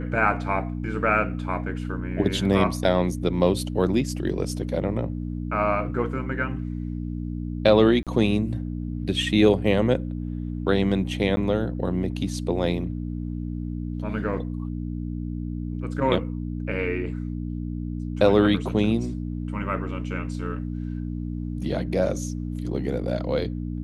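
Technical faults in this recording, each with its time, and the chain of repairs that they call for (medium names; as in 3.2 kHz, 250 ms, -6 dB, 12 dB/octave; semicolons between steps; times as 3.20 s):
hum 60 Hz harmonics 5 -30 dBFS
8.03–8.07 s: dropout 37 ms
11.36–11.37 s: dropout 10 ms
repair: de-hum 60 Hz, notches 5; interpolate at 8.03 s, 37 ms; interpolate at 11.36 s, 10 ms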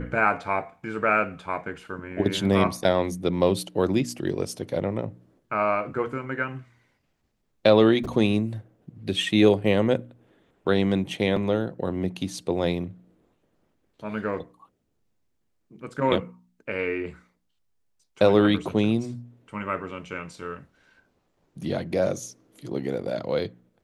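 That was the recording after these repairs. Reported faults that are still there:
nothing left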